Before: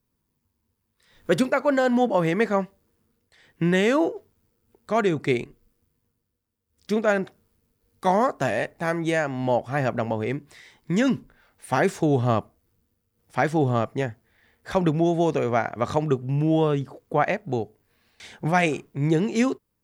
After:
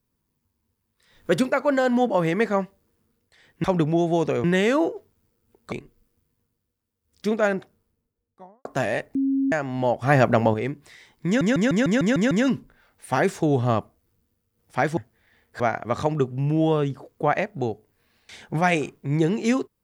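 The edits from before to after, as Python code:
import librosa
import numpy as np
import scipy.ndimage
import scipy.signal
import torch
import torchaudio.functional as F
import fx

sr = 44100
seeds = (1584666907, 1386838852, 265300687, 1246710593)

y = fx.studio_fade_out(x, sr, start_s=7.03, length_s=1.27)
y = fx.edit(y, sr, fx.cut(start_s=4.92, length_s=0.45),
    fx.bleep(start_s=8.8, length_s=0.37, hz=271.0, db=-19.0),
    fx.clip_gain(start_s=9.67, length_s=0.52, db=7.0),
    fx.stutter(start_s=10.91, slice_s=0.15, count=8),
    fx.cut(start_s=13.57, length_s=0.51),
    fx.move(start_s=14.71, length_s=0.8, to_s=3.64), tone=tone)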